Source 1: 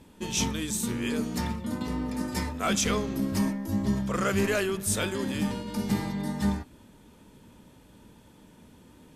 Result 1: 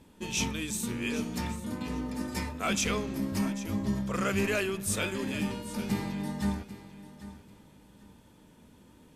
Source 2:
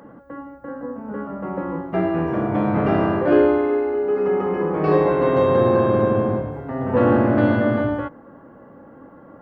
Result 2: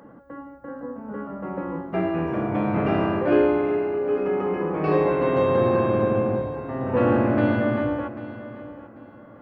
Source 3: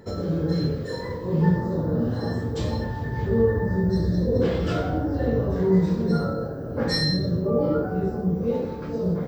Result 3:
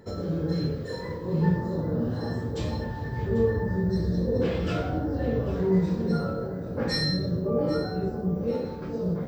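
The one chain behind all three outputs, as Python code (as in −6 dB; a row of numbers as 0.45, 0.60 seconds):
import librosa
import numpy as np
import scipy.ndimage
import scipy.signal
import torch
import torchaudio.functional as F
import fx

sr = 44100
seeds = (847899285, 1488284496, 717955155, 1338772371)

y = fx.dynamic_eq(x, sr, hz=2500.0, q=4.3, threshold_db=-52.0, ratio=4.0, max_db=7)
y = fx.echo_feedback(y, sr, ms=792, feedback_pct=24, wet_db=-15.0)
y = y * 10.0 ** (-3.5 / 20.0)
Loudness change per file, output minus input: −3.0, −3.5, −3.5 LU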